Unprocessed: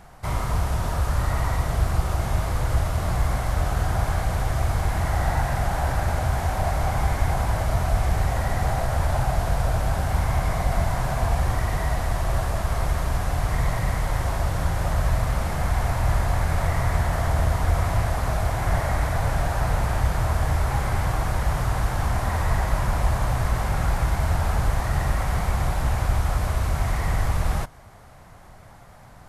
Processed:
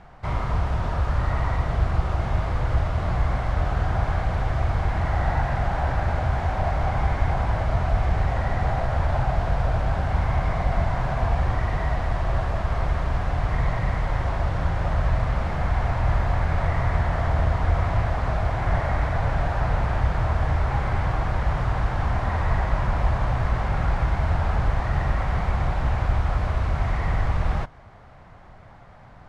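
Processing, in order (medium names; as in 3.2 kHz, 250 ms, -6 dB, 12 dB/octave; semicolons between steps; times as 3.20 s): low-pass 3.3 kHz 12 dB/octave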